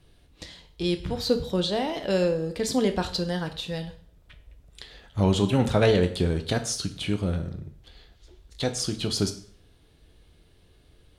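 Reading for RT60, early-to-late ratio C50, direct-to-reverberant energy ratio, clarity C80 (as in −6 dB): 0.55 s, 12.5 dB, 7.0 dB, 16.0 dB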